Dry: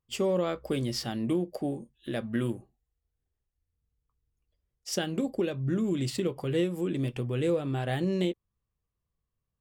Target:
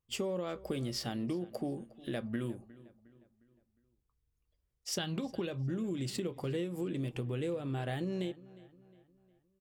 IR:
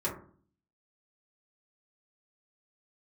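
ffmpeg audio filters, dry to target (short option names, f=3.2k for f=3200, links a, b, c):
-filter_complex "[0:a]asettb=1/sr,asplit=3[a][b][c];[a]atrim=end=4.984[d];[b]atrim=start=4.98:end=5.47,asetpts=PTS-STARTPTS,afade=t=in:d=0.004:c=qsin,afade=t=out:st=0.486:d=0.004:c=qsin,equalizer=f=125:t=o:w=1:g=11,equalizer=f=250:t=o:w=1:g=-3,equalizer=f=500:t=o:w=1:g=-3,equalizer=f=1k:t=o:w=1:g=7,equalizer=f=4k:t=o:w=1:g=12,equalizer=f=8k:t=o:w=1:g=-7[e];[c]atrim=start=5.466[f];[d][e]acrossfade=d=0.004:c1=hsin:c2=qsin[g];[g][f]acrossfade=d=0.004:c1=qsin:c2=hsin,acompressor=threshold=-31dB:ratio=6,asplit=2[h][i];[i]adelay=358,lowpass=f=3.7k:p=1,volume=-19.5dB,asplit=2[j][k];[k]adelay=358,lowpass=f=3.7k:p=1,volume=0.46,asplit=2[l][m];[m]adelay=358,lowpass=f=3.7k:p=1,volume=0.46,asplit=2[n][o];[o]adelay=358,lowpass=f=3.7k:p=1,volume=0.46[p];[j][l][n][p]amix=inputs=4:normalize=0[q];[h][q]amix=inputs=2:normalize=0,volume=-1.5dB"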